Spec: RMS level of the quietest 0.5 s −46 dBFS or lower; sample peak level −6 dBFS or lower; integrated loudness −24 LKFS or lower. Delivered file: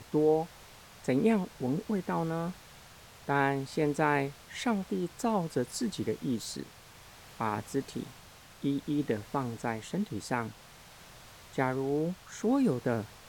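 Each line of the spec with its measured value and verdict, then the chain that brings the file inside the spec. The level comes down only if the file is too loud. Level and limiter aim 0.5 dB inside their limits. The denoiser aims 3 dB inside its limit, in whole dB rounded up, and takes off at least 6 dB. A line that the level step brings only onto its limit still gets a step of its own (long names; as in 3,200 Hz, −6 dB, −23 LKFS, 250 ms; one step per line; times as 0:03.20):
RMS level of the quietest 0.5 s −53 dBFS: in spec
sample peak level −14.5 dBFS: in spec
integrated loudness −32.0 LKFS: in spec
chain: no processing needed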